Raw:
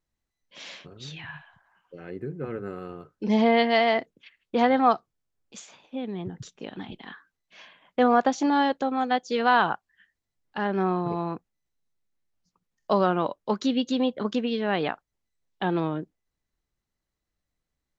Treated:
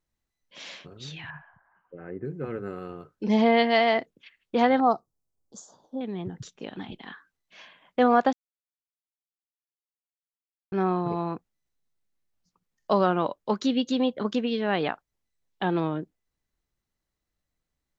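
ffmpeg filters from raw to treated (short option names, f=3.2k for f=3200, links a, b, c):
-filter_complex "[0:a]asettb=1/sr,asplit=3[a][b][c];[a]atrim=end=1.304[d];[b]atrim=start=1.3:end=2.25,asetpts=PTS-STARTPTS,afade=t=in:d=0.004:c=qsin,afade=t=out:st=0.946:d=0.004:c=qsin,lowpass=f=1.9k:w=0.5412,lowpass=f=1.9k:w=1.3066[e];[c]atrim=start=2.246[f];[d][e]acrossfade=d=0.004:c1=hsin:c2=qsin[g];[g][f]acrossfade=d=0.004:c1=qsin:c2=hsin,asettb=1/sr,asplit=3[h][i][j];[h]atrim=end=4.804[k];[i]atrim=start=4.8:end=6.01,asetpts=PTS-STARTPTS,afade=t=in:d=0.004:c=qsin,afade=t=out:st=1.206:d=0.004:c=qsin,asuperstop=centerf=2400:order=4:qfactor=0.56[l];[j]atrim=start=6.006[m];[k][l]acrossfade=d=0.004:c1=hsin:c2=qsin[n];[n][m]acrossfade=d=0.004:c1=qsin:c2=hsin,asplit=3[o][p][q];[o]atrim=end=8.33,asetpts=PTS-STARTPTS,afade=t=out:st=8.326:d=0.004:c=hsin[r];[p]atrim=start=8.33:end=10.72,asetpts=PTS-STARTPTS,volume=0[s];[q]atrim=start=10.72,asetpts=PTS-STARTPTS,afade=t=in:d=0.004:c=hsin[t];[r][s][t]concat=n=3:v=0:a=1"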